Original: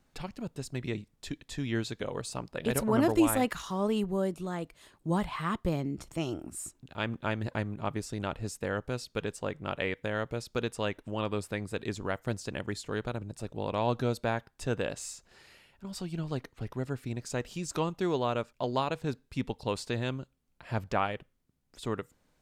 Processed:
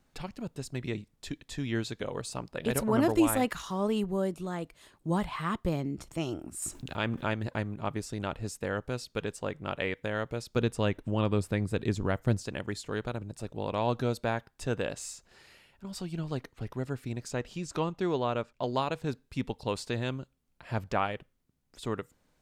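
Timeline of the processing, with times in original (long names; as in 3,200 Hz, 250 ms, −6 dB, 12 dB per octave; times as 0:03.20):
0:06.62–0:07.34: envelope flattener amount 50%
0:10.56–0:12.43: low-shelf EQ 310 Hz +9.5 dB
0:17.30–0:18.63: high-shelf EQ 7,900 Hz −11.5 dB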